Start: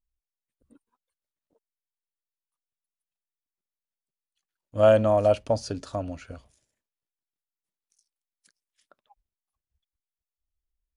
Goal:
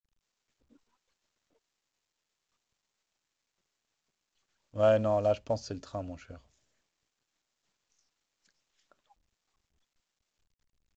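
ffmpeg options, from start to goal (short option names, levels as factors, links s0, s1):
-af "volume=0.473" -ar 16000 -c:a pcm_mulaw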